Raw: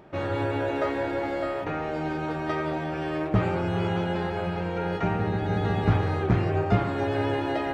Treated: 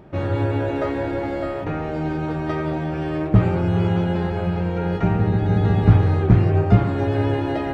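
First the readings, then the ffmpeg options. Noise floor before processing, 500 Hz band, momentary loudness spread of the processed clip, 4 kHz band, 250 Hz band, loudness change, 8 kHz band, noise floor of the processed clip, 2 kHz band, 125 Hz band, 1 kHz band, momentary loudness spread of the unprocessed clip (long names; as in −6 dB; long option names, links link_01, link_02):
−31 dBFS, +3.5 dB, 9 LU, 0.0 dB, +6.5 dB, +6.5 dB, can't be measured, −27 dBFS, +0.5 dB, +9.5 dB, +1.0 dB, 6 LU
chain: -af "lowshelf=frequency=300:gain=11"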